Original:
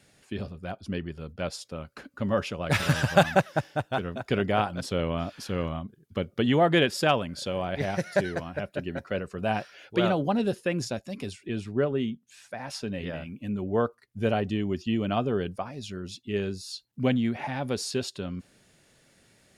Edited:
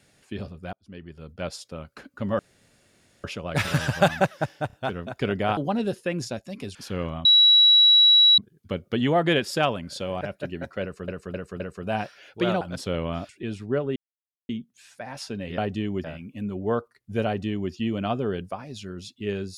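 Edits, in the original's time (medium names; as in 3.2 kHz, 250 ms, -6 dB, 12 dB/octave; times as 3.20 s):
0.73–1.44 s: fade in
2.39 s: insert room tone 0.85 s
3.82 s: stutter 0.03 s, 3 plays
4.66–5.34 s: swap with 10.17–11.35 s
5.84 s: add tone 3.9 kHz -12 dBFS 1.13 s
7.67–8.55 s: delete
9.16–9.42 s: loop, 4 plays
12.02 s: insert silence 0.53 s
14.33–14.79 s: copy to 13.11 s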